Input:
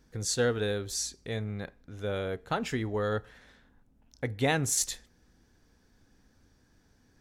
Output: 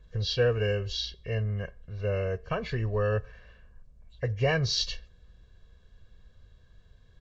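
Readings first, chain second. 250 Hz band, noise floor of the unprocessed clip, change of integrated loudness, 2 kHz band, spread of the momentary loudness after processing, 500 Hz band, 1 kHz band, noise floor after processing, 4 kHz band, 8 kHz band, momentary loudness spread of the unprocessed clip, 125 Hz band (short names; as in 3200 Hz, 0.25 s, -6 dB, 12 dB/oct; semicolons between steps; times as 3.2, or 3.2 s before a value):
-3.5 dB, -66 dBFS, +1.5 dB, +0.5 dB, 9 LU, +2.5 dB, -2.5 dB, -59 dBFS, +5.0 dB, -12.5 dB, 11 LU, +6.0 dB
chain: nonlinear frequency compression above 1700 Hz 1.5:1; low shelf 100 Hz +11.5 dB; comb 1.8 ms, depth 84%; gain -2 dB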